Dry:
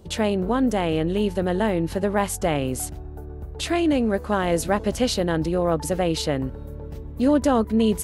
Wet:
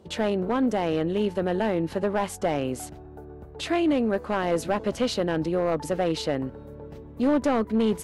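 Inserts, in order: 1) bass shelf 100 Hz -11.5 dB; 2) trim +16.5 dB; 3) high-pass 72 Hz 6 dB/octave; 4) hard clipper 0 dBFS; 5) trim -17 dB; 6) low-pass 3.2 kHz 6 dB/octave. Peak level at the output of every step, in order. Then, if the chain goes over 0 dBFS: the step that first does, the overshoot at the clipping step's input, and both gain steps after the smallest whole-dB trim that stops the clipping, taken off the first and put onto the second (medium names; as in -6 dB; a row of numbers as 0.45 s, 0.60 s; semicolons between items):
-7.5 dBFS, +9.0 dBFS, +9.5 dBFS, 0.0 dBFS, -17.0 dBFS, -17.0 dBFS; step 2, 9.5 dB; step 2 +6.5 dB, step 5 -7 dB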